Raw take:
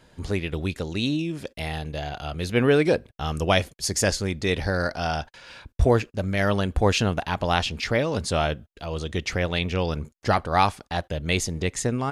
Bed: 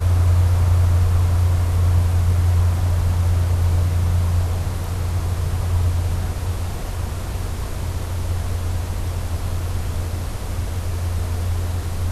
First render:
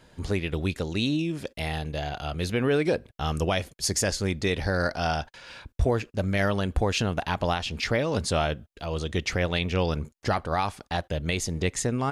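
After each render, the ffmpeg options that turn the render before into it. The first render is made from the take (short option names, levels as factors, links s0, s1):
-af "alimiter=limit=0.2:level=0:latency=1:release=181"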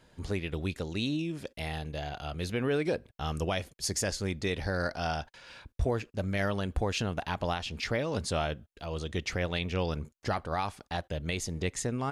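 -af "volume=0.531"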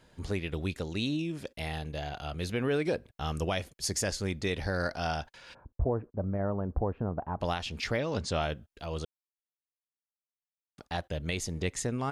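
-filter_complex "[0:a]asplit=3[s0][s1][s2];[s0]afade=t=out:st=5.53:d=0.02[s3];[s1]lowpass=f=1100:w=0.5412,lowpass=f=1100:w=1.3066,afade=t=in:st=5.53:d=0.02,afade=t=out:st=7.4:d=0.02[s4];[s2]afade=t=in:st=7.4:d=0.02[s5];[s3][s4][s5]amix=inputs=3:normalize=0,asettb=1/sr,asplit=3[s6][s7][s8];[s6]atrim=end=7.994[s9];[s7]atrim=start=7.99:end=8.42,asetpts=PTS-STARTPTS,afade=t=in:d=0.004:c=qsin,afade=t=out:st=0.426:d=0.004:c=qsin,lowpass=f=7300:w=0.5412,lowpass=f=7300:w=1.3066[s10];[s8]atrim=start=8.416[s11];[s9][s10]acrossfade=d=0.004:c1=hsin:c2=qsin[s12];[s12][s11]acrossfade=d=0.004:c1=qsin:c2=hsin,asplit=3[s13][s14][s15];[s13]atrim=end=9.05,asetpts=PTS-STARTPTS,afade=t=out:st=9.046:d=0.004:c=hsin[s16];[s14]atrim=start=9.05:end=10.78,asetpts=PTS-STARTPTS,volume=0[s17];[s15]atrim=start=10.78,asetpts=PTS-STARTPTS,afade=t=in:d=0.004:c=hsin[s18];[s16][s17][s18]concat=n=3:v=0:a=1"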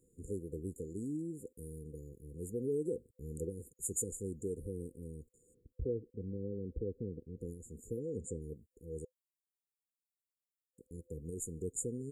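-af "lowshelf=f=370:g=-11,afftfilt=real='re*(1-between(b*sr/4096,510,6800))':imag='im*(1-between(b*sr/4096,510,6800))':win_size=4096:overlap=0.75"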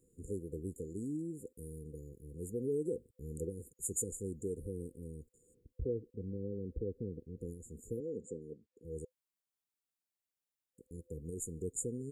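-filter_complex "[0:a]asettb=1/sr,asplit=3[s0][s1][s2];[s0]atrim=end=8.004[s3];[s1]atrim=start=8:end=8.85,asetpts=PTS-STARTPTS,afade=t=in:d=0.004:c=qsin,afade=t=out:st=0.846:d=0.004:c=qsin,highpass=200,lowpass=5100[s4];[s2]atrim=start=8.846[s5];[s3][s4]acrossfade=d=0.004:c1=hsin:c2=qsin[s6];[s6][s5]acrossfade=d=0.004:c1=qsin:c2=hsin"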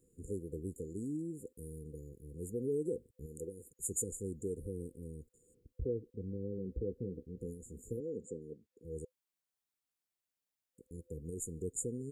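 -filter_complex "[0:a]asettb=1/sr,asplit=3[s0][s1][s2];[s0]atrim=end=3.264[s3];[s1]atrim=start=3.26:end=3.7,asetpts=PTS-STARTPTS,afade=t=in:d=0.004:c=qsin,afade=t=out:st=0.436:d=0.004:c=qsin,lowshelf=f=270:g=-10.5[s4];[s2]atrim=start=3.696[s5];[s3][s4]acrossfade=d=0.004:c1=hsin:c2=qsin[s6];[s6][s5]acrossfade=d=0.004:c1=qsin:c2=hsin,asettb=1/sr,asplit=3[s7][s8][s9];[s7]atrim=end=6.564[s10];[s8]atrim=start=6.56:end=7.97,asetpts=PTS-STARTPTS,afade=t=in:d=0.004:c=qsin,afade=t=out:st=1.406:d=0.004:c=qsin,asplit=2[s11][s12];[s12]adelay=16,volume=0.376[s13];[s11][s13]amix=inputs=2:normalize=0,atrim=end_sample=62181[s14];[s9]atrim=start=7.966[s15];[s10][s14]acrossfade=d=0.004:c1=hsin:c2=qsin[s16];[s16][s15]acrossfade=d=0.004:c1=qsin:c2=hsin"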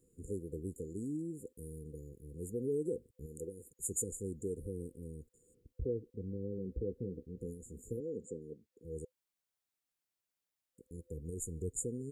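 -filter_complex "[0:a]asettb=1/sr,asplit=3[s0][s1][s2];[s0]atrim=end=10.924[s3];[s1]atrim=start=10.92:end=11.81,asetpts=PTS-STARTPTS,afade=t=in:d=0.004:c=qsin,afade=t=out:st=0.886:d=0.004:c=qsin,asubboost=boost=7:cutoff=130[s4];[s2]atrim=start=11.806[s5];[s3][s4]acrossfade=d=0.004:c1=hsin:c2=qsin[s6];[s6][s5]acrossfade=d=0.004:c1=qsin:c2=hsin"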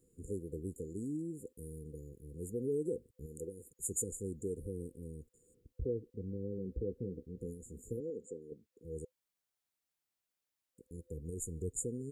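-filter_complex "[0:a]asettb=1/sr,asplit=3[s0][s1][s2];[s0]atrim=end=8.104[s3];[s1]atrim=start=8.1:end=8.52,asetpts=PTS-STARTPTS,afade=t=in:d=0.004:c=qsin,afade=t=out:st=0.416:d=0.004:c=qsin,bass=f=250:g=-9,treble=f=4000:g=-2[s4];[s2]atrim=start=8.516[s5];[s3][s4]acrossfade=d=0.004:c1=hsin:c2=qsin[s6];[s6][s5]acrossfade=d=0.004:c1=qsin:c2=hsin"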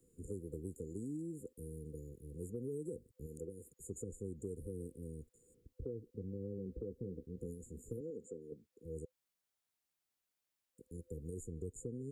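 -filter_complex "[0:a]acrossover=split=150|350|4400[s0][s1][s2][s3];[s0]acompressor=threshold=0.00447:ratio=4[s4];[s1]acompressor=threshold=0.00447:ratio=4[s5];[s2]acompressor=threshold=0.00447:ratio=4[s6];[s3]acompressor=threshold=0.00112:ratio=4[s7];[s4][s5][s6][s7]amix=inputs=4:normalize=0"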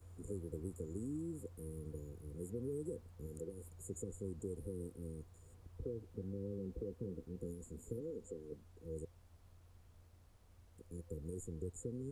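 -filter_complex "[1:a]volume=0.0106[s0];[0:a][s0]amix=inputs=2:normalize=0"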